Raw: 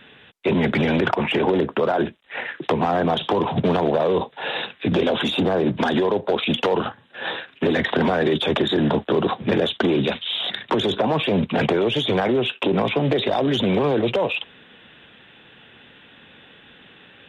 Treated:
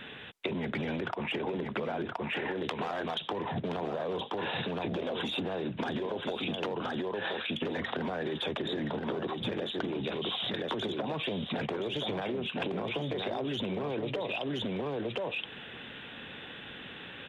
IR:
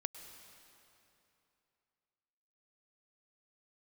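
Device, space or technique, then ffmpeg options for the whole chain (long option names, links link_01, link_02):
serial compression, peaks first: -filter_complex "[0:a]asettb=1/sr,asplit=3[link_01][link_02][link_03];[link_01]atrim=end=2.574[link_04];[link_02]atrim=start=2.57:end=3.21,asetpts=PTS-STARTPTS,afade=type=in:duration=0.004:curve=qsin,afade=type=out:start_time=0.636:duration=0.004:curve=qsin,tiltshelf=frequency=970:gain=-7.5[link_05];[link_03]atrim=start=3.206[link_06];[link_04][link_05]acrossfade=duration=0.004:curve1=hsin:curve2=qsin[link_07];[link_07][link_06]acrossfade=duration=0.004:curve1=qsin:curve2=hsin,aecho=1:1:1022:0.447,acompressor=threshold=-30dB:ratio=6,acompressor=threshold=-34dB:ratio=3,volume=2.5dB"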